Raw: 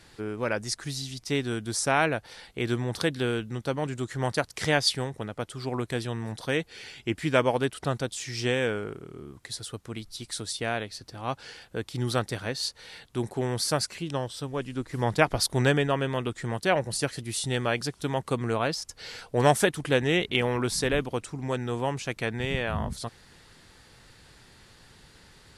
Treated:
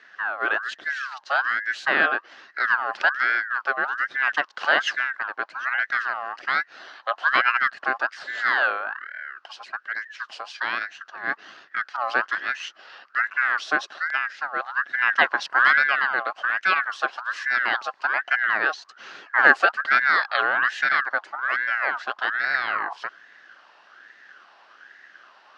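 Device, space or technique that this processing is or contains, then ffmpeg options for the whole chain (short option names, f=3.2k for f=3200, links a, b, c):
voice changer toy: -af "aeval=exprs='val(0)*sin(2*PI*1400*n/s+1400*0.35/1.2*sin(2*PI*1.2*n/s))':c=same,highpass=470,equalizer=f=470:t=q:w=4:g=-6,equalizer=f=940:t=q:w=4:g=-6,equalizer=f=1.6k:t=q:w=4:g=8,equalizer=f=2.3k:t=q:w=4:g=-8,equalizer=f=3.5k:t=q:w=4:g=-8,lowpass=f=3.9k:w=0.5412,lowpass=f=3.9k:w=1.3066,volume=7dB"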